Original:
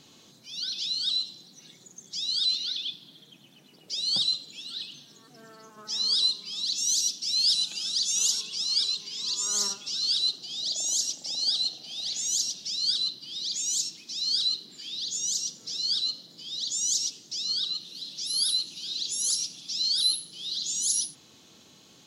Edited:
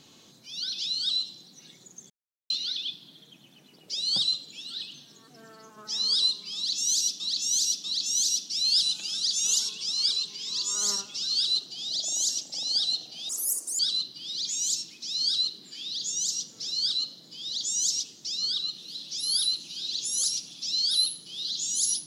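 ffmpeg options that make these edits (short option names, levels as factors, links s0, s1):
-filter_complex "[0:a]asplit=7[s0][s1][s2][s3][s4][s5][s6];[s0]atrim=end=2.1,asetpts=PTS-STARTPTS,afade=t=out:st=2.096:d=0.004:c=hsin[s7];[s1]atrim=start=2.1:end=2.5,asetpts=PTS-STARTPTS,volume=0[s8];[s2]atrim=start=2.5:end=7.202,asetpts=PTS-STARTPTS,afade=t=in:d=0.004:c=hsin[s9];[s3]atrim=start=6.558:end=7.202[s10];[s4]atrim=start=6.558:end=12.014[s11];[s5]atrim=start=12.01:end=12.86,asetpts=PTS-STARTPTS,asetrate=74529,aresample=44100,atrim=end_sample=22180,asetpts=PTS-STARTPTS[s12];[s6]atrim=start=12.856[s13];[s7][s8][s9]concat=n=3:v=0:a=1[s14];[s14][s10]acrossfade=d=0.004:c1=hsin:c2=hsin[s15];[s15][s11]acrossfade=d=0.004:c1=hsin:c2=hsin[s16];[s16][s12]acrossfade=d=0.004:c1=hsin:c2=hsin[s17];[s17][s13]acrossfade=d=0.004:c1=hsin:c2=hsin"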